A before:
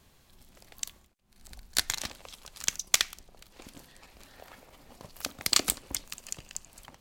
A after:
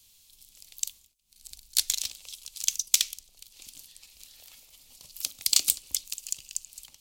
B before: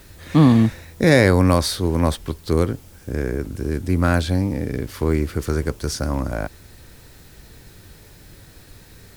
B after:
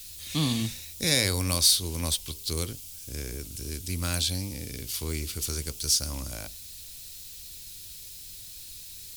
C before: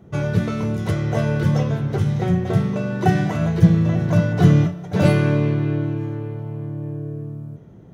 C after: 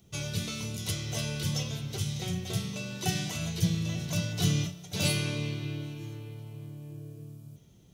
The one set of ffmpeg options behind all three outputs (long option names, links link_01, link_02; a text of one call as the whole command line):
ffmpeg -i in.wav -filter_complex "[0:a]lowshelf=frequency=100:gain=10.5,acrossover=split=1100[link_01][link_02];[link_01]flanger=delay=9.4:depth=4.3:regen=-79:speed=1.1:shape=sinusoidal[link_03];[link_02]aexciter=amount=4.8:drive=8.9:freq=2500[link_04];[link_03][link_04]amix=inputs=2:normalize=0,volume=-13dB" out.wav